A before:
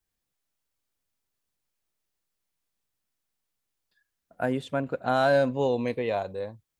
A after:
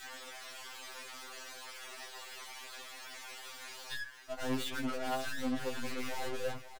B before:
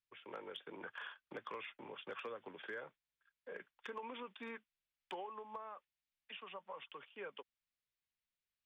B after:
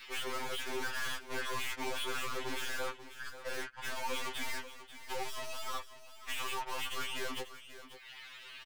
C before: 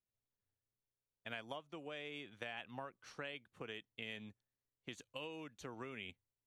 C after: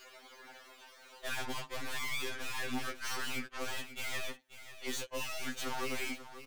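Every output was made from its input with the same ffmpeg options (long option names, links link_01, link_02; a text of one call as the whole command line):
ffmpeg -i in.wav -filter_complex "[0:a]highpass=frequency=200:width=0.5412,highpass=frequency=200:width=1.3066,asplit=2[link_01][link_02];[link_02]acompressor=mode=upward:threshold=-35dB:ratio=2.5,volume=2.5dB[link_03];[link_01][link_03]amix=inputs=2:normalize=0,highshelf=frequency=3800:gain=5,agate=range=-14dB:threshold=-42dB:ratio=16:detection=peak,areverse,acompressor=threshold=-31dB:ratio=20,areverse,adynamicequalizer=threshold=0.00316:dfrequency=600:dqfactor=2:tfrequency=600:tqfactor=2:attack=5:release=100:ratio=0.375:range=3:mode=cutabove:tftype=bell,asplit=2[link_04][link_05];[link_05]highpass=frequency=720:poles=1,volume=29dB,asoftclip=type=tanh:threshold=-24dB[link_06];[link_04][link_06]amix=inputs=2:normalize=0,lowpass=frequency=2200:poles=1,volume=-6dB,afftdn=noise_reduction=19:noise_floor=-56,aeval=exprs='(tanh(282*val(0)+0.4)-tanh(0.4))/282':channel_layout=same,aecho=1:1:538:0.224,afftfilt=real='re*2.45*eq(mod(b,6),0)':imag='im*2.45*eq(mod(b,6),0)':win_size=2048:overlap=0.75,volume=13dB" out.wav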